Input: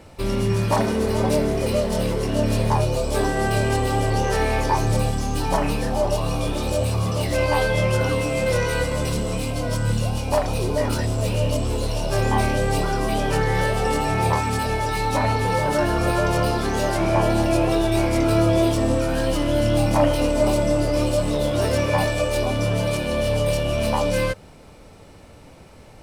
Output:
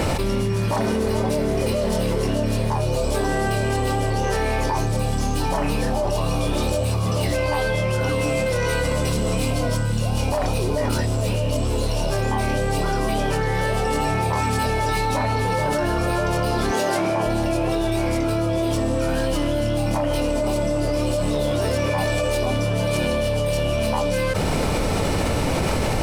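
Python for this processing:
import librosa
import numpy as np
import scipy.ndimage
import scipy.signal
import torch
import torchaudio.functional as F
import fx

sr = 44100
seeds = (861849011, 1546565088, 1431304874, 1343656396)

y = fx.highpass(x, sr, hz=fx.line((16.71, 260.0), (17.25, 120.0)), slope=12, at=(16.71, 17.25), fade=0.02)
y = fx.env_flatten(y, sr, amount_pct=100)
y = y * librosa.db_to_amplitude(-7.0)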